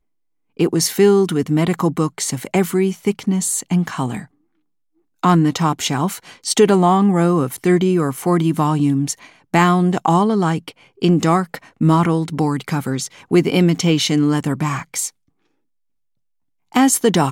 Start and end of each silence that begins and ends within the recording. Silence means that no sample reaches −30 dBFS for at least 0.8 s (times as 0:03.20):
0:04.24–0:05.24
0:15.09–0:16.74